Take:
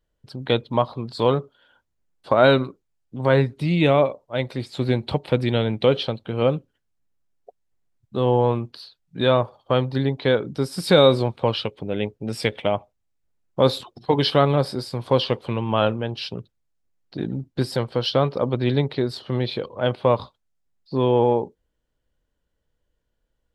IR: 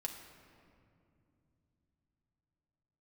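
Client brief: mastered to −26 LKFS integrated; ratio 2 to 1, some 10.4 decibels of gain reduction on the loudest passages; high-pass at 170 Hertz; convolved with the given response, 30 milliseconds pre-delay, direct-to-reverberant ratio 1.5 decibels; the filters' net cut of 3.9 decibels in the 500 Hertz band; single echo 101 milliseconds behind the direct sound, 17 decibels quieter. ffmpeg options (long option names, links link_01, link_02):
-filter_complex "[0:a]highpass=170,equalizer=frequency=500:width_type=o:gain=-4.5,acompressor=threshold=-32dB:ratio=2,aecho=1:1:101:0.141,asplit=2[link_01][link_02];[1:a]atrim=start_sample=2205,adelay=30[link_03];[link_02][link_03]afir=irnorm=-1:irlink=0,volume=-0.5dB[link_04];[link_01][link_04]amix=inputs=2:normalize=0,volume=4.5dB"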